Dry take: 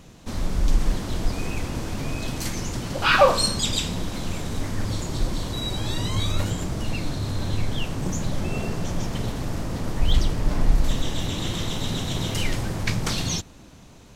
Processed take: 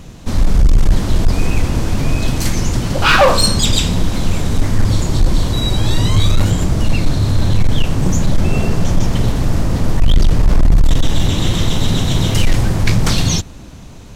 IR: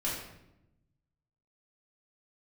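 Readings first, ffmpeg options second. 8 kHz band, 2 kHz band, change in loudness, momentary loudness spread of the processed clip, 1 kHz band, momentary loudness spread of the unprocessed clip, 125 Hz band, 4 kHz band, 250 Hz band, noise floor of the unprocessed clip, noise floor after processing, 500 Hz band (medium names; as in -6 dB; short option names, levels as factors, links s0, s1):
+8.0 dB, +7.5 dB, +10.0 dB, 5 LU, +7.0 dB, 7 LU, +12.5 dB, +8.0 dB, +10.5 dB, -47 dBFS, -34 dBFS, +6.5 dB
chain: -af "lowshelf=f=140:g=7.5,asoftclip=type=hard:threshold=0.211,volume=2.66"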